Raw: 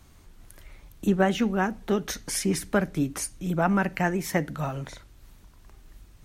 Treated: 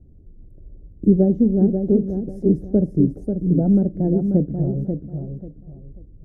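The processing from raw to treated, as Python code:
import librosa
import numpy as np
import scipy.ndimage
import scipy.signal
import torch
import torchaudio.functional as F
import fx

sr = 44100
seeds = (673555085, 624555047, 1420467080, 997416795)

p1 = np.where(np.abs(x) >= 10.0 ** (-33.5 / 20.0), x, 0.0)
p2 = x + (p1 * librosa.db_to_amplitude(-7.0))
p3 = scipy.signal.sosfilt(scipy.signal.cheby2(4, 40, 1000.0, 'lowpass', fs=sr, output='sos'), p2)
p4 = fx.low_shelf(p3, sr, hz=330.0, db=4.5)
p5 = fx.echo_feedback(p4, sr, ms=539, feedback_pct=25, wet_db=-6.5)
y = p5 * librosa.db_to_amplitude(2.5)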